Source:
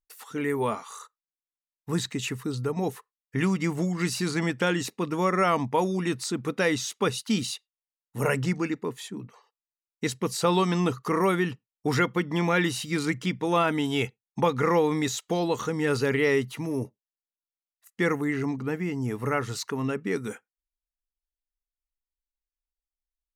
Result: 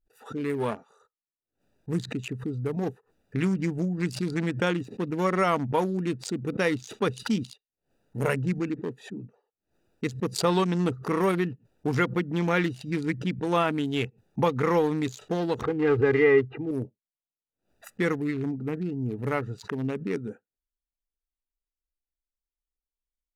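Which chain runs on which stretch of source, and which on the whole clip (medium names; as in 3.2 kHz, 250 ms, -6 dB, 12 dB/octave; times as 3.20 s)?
15.62–16.71 s: low-pass 2.3 kHz 24 dB/octave + comb 2.5 ms, depth 91%
whole clip: local Wiener filter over 41 samples; swell ahead of each attack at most 150 dB/s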